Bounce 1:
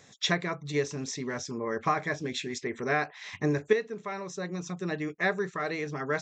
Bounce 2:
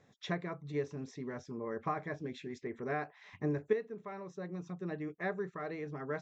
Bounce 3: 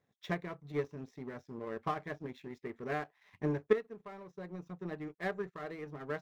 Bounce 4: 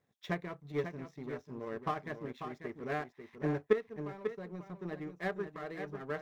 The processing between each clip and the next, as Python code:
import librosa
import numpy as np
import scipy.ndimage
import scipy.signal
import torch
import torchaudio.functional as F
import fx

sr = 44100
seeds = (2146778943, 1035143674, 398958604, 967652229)

y1 = fx.lowpass(x, sr, hz=1000.0, slope=6)
y1 = y1 * librosa.db_to_amplitude(-6.0)
y2 = scipy.signal.medfilt(y1, 5)
y2 = fx.power_curve(y2, sr, exponent=1.4)
y2 = y2 * librosa.db_to_amplitude(4.5)
y3 = y2 + 10.0 ** (-8.5 / 20.0) * np.pad(y2, (int(543 * sr / 1000.0), 0))[:len(y2)]